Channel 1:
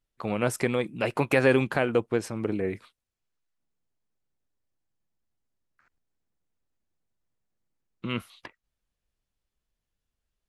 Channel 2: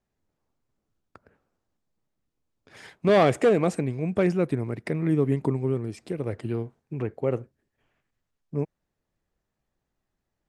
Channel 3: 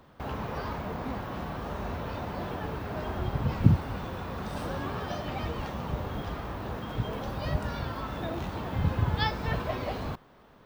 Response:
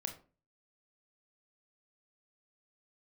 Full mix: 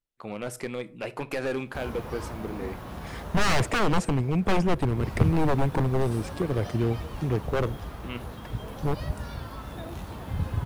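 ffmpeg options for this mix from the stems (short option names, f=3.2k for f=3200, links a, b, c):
-filter_complex "[0:a]lowshelf=f=110:g=-12,asoftclip=type=hard:threshold=-18.5dB,volume=-9dB,asplit=2[a][b];[b]volume=-5.5dB[c];[1:a]aeval=exprs='0.0841*(abs(mod(val(0)/0.0841+3,4)-2)-1)':c=same,adelay=300,volume=2.5dB[d];[2:a]equalizer=f=10k:w=0.89:g=13.5,adelay=1550,volume=4dB,afade=t=out:st=3.55:d=0.3:silence=0.334965,afade=t=in:st=4.8:d=0.29:silence=0.375837[e];[3:a]atrim=start_sample=2205[f];[c][f]afir=irnorm=-1:irlink=0[g];[a][d][e][g]amix=inputs=4:normalize=0,lowshelf=f=80:g=9"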